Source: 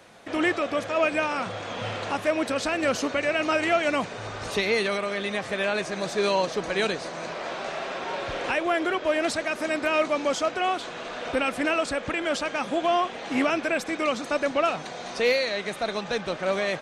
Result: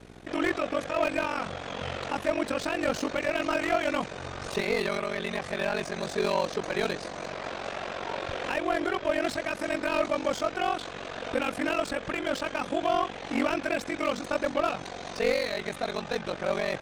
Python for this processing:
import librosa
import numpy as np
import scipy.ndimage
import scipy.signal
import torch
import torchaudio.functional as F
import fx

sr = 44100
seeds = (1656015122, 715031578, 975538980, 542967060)

y = fx.dmg_buzz(x, sr, base_hz=60.0, harmonics=7, level_db=-47.0, tilt_db=-1, odd_only=False)
y = y * np.sin(2.0 * np.pi * 23.0 * np.arange(len(y)) / sr)
y = fx.slew_limit(y, sr, full_power_hz=98.0)